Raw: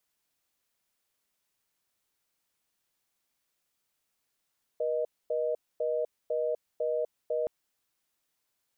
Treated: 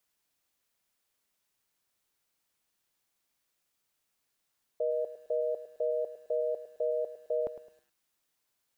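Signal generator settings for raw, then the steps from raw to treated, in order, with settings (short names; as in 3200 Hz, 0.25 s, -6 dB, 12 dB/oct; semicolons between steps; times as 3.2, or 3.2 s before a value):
call progress tone reorder tone, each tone -29.5 dBFS 2.67 s
lo-fi delay 0.107 s, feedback 35%, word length 10-bit, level -12.5 dB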